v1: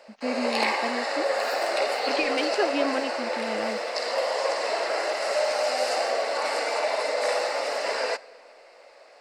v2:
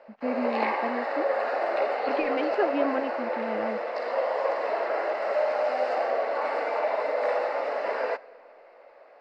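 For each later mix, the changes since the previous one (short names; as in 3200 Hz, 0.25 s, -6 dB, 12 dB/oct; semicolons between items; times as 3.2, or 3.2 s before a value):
master: add LPF 1700 Hz 12 dB/oct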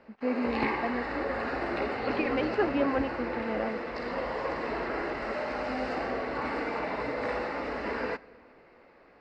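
background: remove resonant high-pass 600 Hz, resonance Q 3.6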